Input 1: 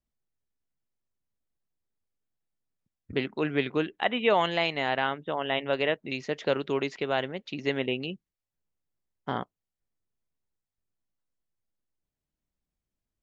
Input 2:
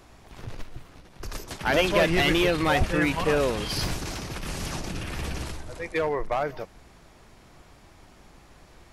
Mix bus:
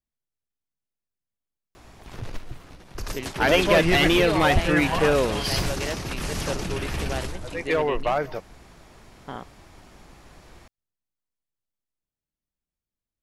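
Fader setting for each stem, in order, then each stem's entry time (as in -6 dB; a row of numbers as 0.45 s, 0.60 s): -5.0 dB, +3.0 dB; 0.00 s, 1.75 s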